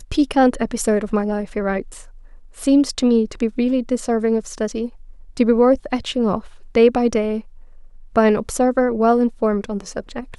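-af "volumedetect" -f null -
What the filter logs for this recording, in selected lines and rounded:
mean_volume: -19.1 dB
max_volume: -2.8 dB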